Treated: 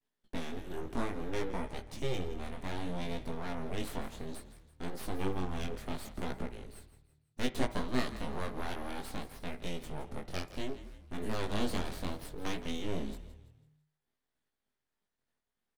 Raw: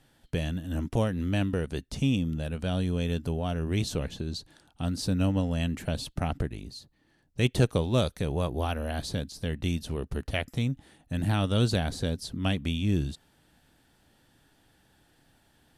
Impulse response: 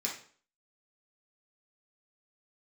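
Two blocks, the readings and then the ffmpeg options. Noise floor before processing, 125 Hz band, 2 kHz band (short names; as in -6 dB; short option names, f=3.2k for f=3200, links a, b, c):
-66 dBFS, -15.0 dB, -5.5 dB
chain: -filter_complex "[0:a]aeval=exprs='abs(val(0))':c=same,agate=range=-33dB:threshold=-52dB:ratio=3:detection=peak,flanger=delay=16:depth=6.5:speed=0.63,asplit=5[a][b][c][d][e];[b]adelay=166,afreqshift=-38,volume=-14dB[f];[c]adelay=332,afreqshift=-76,volume=-22dB[g];[d]adelay=498,afreqshift=-114,volume=-29.9dB[h];[e]adelay=664,afreqshift=-152,volume=-37.9dB[i];[a][f][g][h][i]amix=inputs=5:normalize=0,asplit=2[j][k];[1:a]atrim=start_sample=2205,lowpass=2.5k[l];[k][l]afir=irnorm=-1:irlink=0,volume=-11dB[m];[j][m]amix=inputs=2:normalize=0,volume=-3.5dB"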